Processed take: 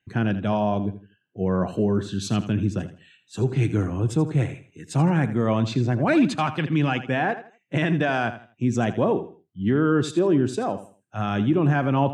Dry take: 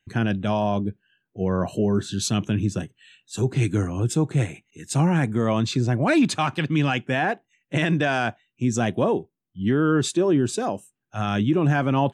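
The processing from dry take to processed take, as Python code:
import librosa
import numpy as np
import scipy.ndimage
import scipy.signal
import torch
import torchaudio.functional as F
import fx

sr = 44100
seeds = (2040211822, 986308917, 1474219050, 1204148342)

y = scipy.signal.sosfilt(scipy.signal.butter(2, 54.0, 'highpass', fs=sr, output='sos'), x)
y = fx.high_shelf(y, sr, hz=4400.0, db=-11.5)
y = fx.echo_feedback(y, sr, ms=81, feedback_pct=28, wet_db=-13.0)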